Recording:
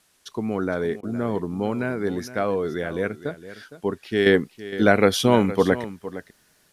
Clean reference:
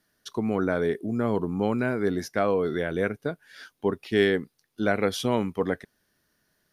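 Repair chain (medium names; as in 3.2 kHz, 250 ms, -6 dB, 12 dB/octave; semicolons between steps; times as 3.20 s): interpolate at 1.01 s, 19 ms; expander -53 dBFS, range -21 dB; inverse comb 462 ms -14.5 dB; trim 0 dB, from 4.26 s -7.5 dB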